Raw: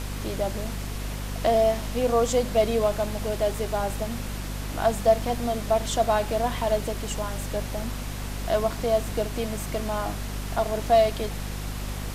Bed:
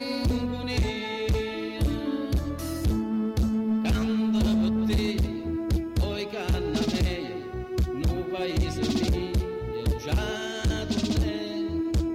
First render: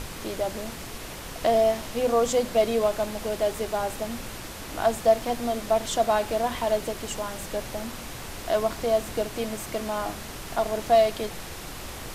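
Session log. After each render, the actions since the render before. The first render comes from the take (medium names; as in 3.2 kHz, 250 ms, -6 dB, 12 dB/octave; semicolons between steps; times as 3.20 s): hum notches 50/100/150/200/250 Hz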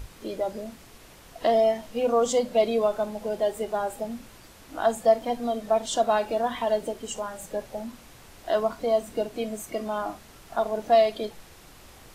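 noise print and reduce 12 dB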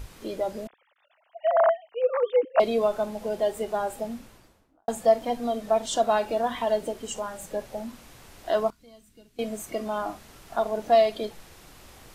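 0.67–2.60 s: formants replaced by sine waves; 4.05–4.88 s: studio fade out; 8.70–9.39 s: amplifier tone stack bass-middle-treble 6-0-2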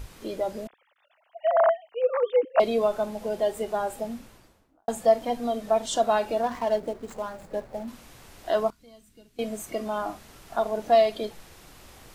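6.43–7.88 s: median filter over 15 samples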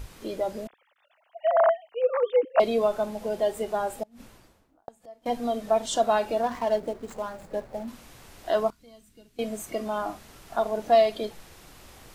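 4.03–5.26 s: inverted gate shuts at -26 dBFS, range -27 dB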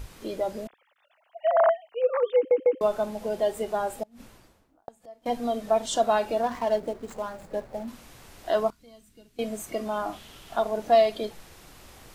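2.36 s: stutter in place 0.15 s, 3 plays; 10.12–10.60 s: peaking EQ 3.2 kHz +14 dB -> +7 dB 0.5 oct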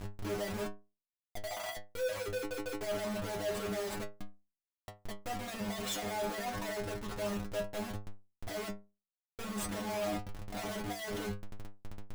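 Schmitt trigger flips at -39 dBFS; inharmonic resonator 100 Hz, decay 0.3 s, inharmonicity 0.002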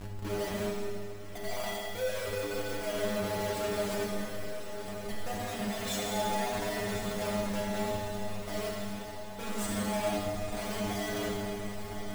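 on a send: echo that smears into a reverb 1091 ms, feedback 55%, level -9 dB; on the sum: Schroeder reverb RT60 2.3 s, combs from 27 ms, DRR -2 dB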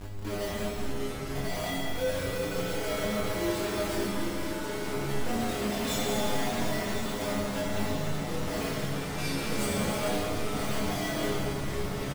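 doubling 23 ms -3 dB; ever faster or slower copies 390 ms, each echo -7 st, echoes 3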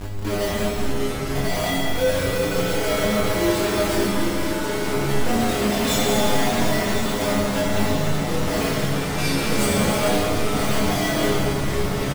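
trim +9.5 dB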